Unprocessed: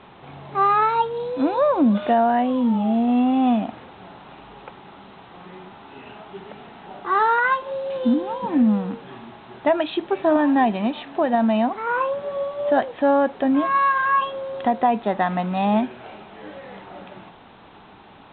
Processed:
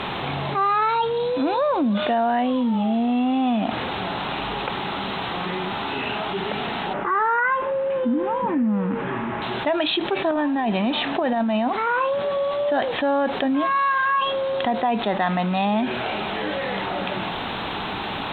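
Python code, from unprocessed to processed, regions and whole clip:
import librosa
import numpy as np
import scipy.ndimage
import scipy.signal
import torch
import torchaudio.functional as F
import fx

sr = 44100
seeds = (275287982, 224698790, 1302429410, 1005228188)

y = fx.chain(x, sr, fx.lowpass(hz=2200.0, slope=24),
    fx.notch(hz=740.0, q=6.3), at=(6.93, 9.42))
y = fx.chain(y, sr, fx.over_compress(threshold_db=-20.0, ratio=-0.5),
    fx.high_shelf(hz=3700.0, db=-6.5), at=(10.31, 11.68))
y = fx.high_shelf(y, sr, hz=2500.0, db=10.5)
y = fx.env_flatten(y, sr, amount_pct=70)
y = y * librosa.db_to_amplitude(-5.5)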